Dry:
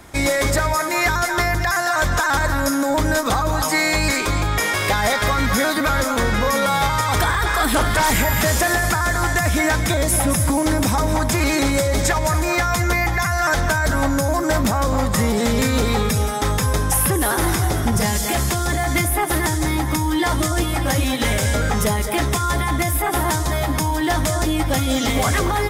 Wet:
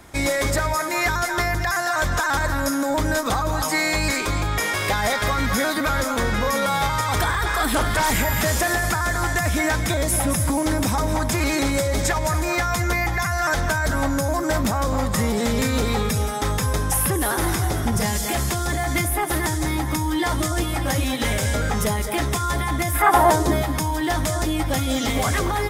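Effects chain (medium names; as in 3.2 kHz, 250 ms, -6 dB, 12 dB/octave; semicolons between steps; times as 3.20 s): 22.93–23.61 s: peaking EQ 1.8 kHz -> 240 Hz +14 dB 1.4 oct; trim -3 dB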